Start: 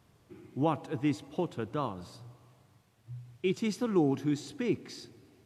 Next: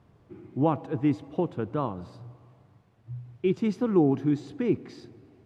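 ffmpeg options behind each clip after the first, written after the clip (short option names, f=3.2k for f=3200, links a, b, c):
-af "lowpass=f=1.1k:p=1,volume=5.5dB"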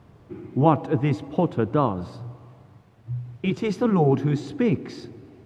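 -af "afftfilt=real='re*lt(hypot(re,im),0.631)':imag='im*lt(hypot(re,im),0.631)':win_size=1024:overlap=0.75,volume=8dB"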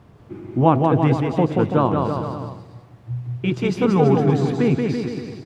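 -af "aecho=1:1:180|333|463|573.6|667.6:0.631|0.398|0.251|0.158|0.1,volume=2.5dB"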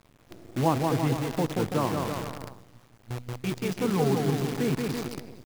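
-af "acrusher=bits=5:dc=4:mix=0:aa=0.000001,volume=-9dB"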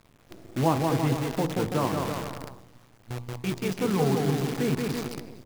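-af "bandreject=f=58.23:t=h:w=4,bandreject=f=116.46:t=h:w=4,bandreject=f=174.69:t=h:w=4,bandreject=f=232.92:t=h:w=4,bandreject=f=291.15:t=h:w=4,bandreject=f=349.38:t=h:w=4,bandreject=f=407.61:t=h:w=4,bandreject=f=465.84:t=h:w=4,bandreject=f=524.07:t=h:w=4,bandreject=f=582.3:t=h:w=4,bandreject=f=640.53:t=h:w=4,bandreject=f=698.76:t=h:w=4,bandreject=f=756.99:t=h:w=4,bandreject=f=815.22:t=h:w=4,bandreject=f=873.45:t=h:w=4,bandreject=f=931.68:t=h:w=4,bandreject=f=989.91:t=h:w=4,bandreject=f=1.04814k:t=h:w=4,bandreject=f=1.10637k:t=h:w=4,bandreject=f=1.1646k:t=h:w=4,volume=1dB"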